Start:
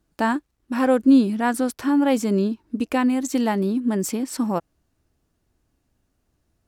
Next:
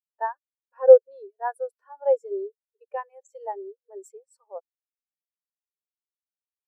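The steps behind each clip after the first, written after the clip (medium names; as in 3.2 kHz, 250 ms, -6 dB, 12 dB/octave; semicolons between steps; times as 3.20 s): Chebyshev high-pass 400 Hz, order 6; treble shelf 7.2 kHz +8 dB; spectral contrast expander 2.5:1; trim +9 dB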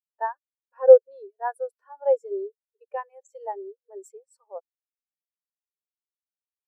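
no audible change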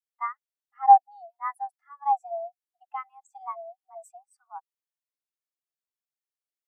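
frequency shift +280 Hz; trim -3 dB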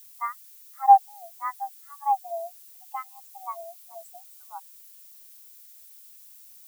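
added noise violet -50 dBFS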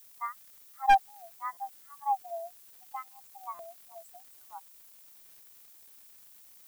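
one-sided wavefolder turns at -10 dBFS; crackle 330 per s -45 dBFS; buffer glitch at 1.52/3.54 s, samples 256, times 8; trim -5.5 dB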